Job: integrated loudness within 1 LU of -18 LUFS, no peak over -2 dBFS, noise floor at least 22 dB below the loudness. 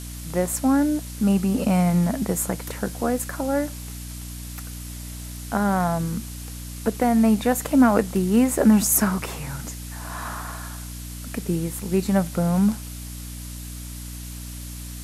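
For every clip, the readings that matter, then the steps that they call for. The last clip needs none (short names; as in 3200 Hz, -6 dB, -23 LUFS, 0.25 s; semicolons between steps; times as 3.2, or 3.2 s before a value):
hum 60 Hz; harmonics up to 300 Hz; hum level -34 dBFS; noise floor -35 dBFS; noise floor target -45 dBFS; loudness -22.5 LUFS; peak -5.5 dBFS; loudness target -18.0 LUFS
-> notches 60/120/180/240/300 Hz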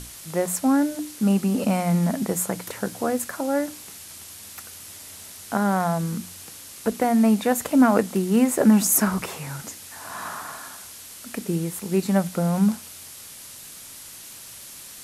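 hum none; noise floor -42 dBFS; noise floor target -45 dBFS
-> noise print and reduce 6 dB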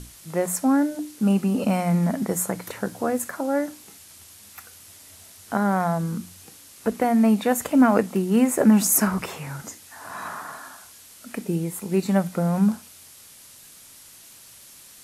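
noise floor -48 dBFS; loudness -23.0 LUFS; peak -6.0 dBFS; loudness target -18.0 LUFS
-> gain +5 dB; limiter -2 dBFS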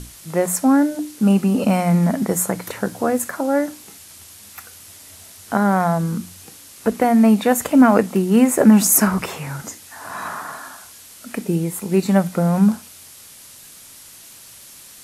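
loudness -18.0 LUFS; peak -2.0 dBFS; noise floor -43 dBFS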